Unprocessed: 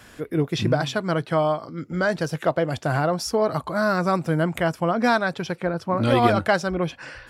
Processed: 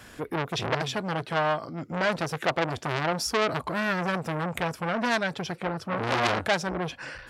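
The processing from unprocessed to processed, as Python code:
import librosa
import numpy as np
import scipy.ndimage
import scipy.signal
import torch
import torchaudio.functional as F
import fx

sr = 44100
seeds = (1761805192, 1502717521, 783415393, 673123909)

y = fx.dynamic_eq(x, sr, hz=320.0, q=0.77, threshold_db=-32.0, ratio=4.0, max_db=3, at=(1.84, 4.16))
y = fx.transformer_sat(y, sr, knee_hz=3300.0)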